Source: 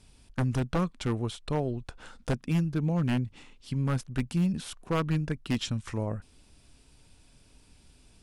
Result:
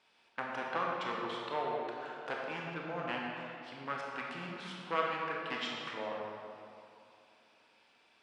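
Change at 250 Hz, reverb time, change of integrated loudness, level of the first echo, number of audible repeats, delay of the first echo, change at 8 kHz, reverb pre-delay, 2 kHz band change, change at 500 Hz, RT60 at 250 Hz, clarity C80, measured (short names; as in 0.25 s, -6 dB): -15.5 dB, 2.6 s, -7.5 dB, none, none, none, -15.5 dB, 22 ms, +2.5 dB, -3.0 dB, 2.6 s, 0.5 dB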